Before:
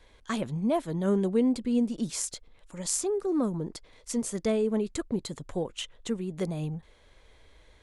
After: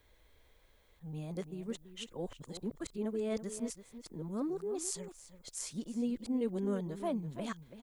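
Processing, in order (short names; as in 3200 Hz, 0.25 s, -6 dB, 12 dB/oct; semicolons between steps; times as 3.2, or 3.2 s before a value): whole clip reversed; outdoor echo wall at 57 m, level -12 dB; added noise violet -70 dBFS; gain -9 dB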